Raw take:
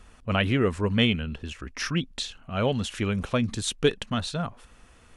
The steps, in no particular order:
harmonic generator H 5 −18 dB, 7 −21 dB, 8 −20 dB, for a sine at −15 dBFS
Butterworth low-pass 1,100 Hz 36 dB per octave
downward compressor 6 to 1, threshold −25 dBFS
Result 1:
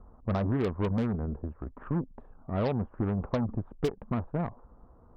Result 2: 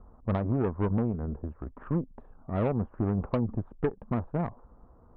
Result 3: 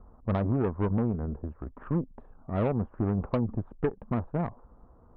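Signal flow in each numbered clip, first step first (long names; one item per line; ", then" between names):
Butterworth low-pass, then harmonic generator, then downward compressor
downward compressor, then Butterworth low-pass, then harmonic generator
Butterworth low-pass, then downward compressor, then harmonic generator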